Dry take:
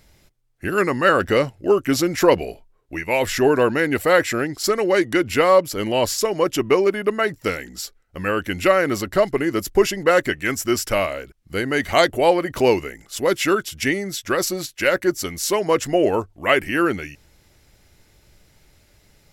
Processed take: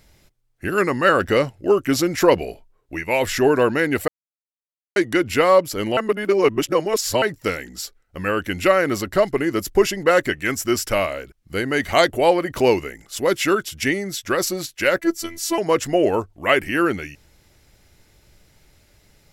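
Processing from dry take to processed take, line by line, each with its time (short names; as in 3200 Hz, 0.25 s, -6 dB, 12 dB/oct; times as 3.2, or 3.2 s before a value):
4.08–4.96 mute
5.97–7.22 reverse
14.99–15.58 robotiser 333 Hz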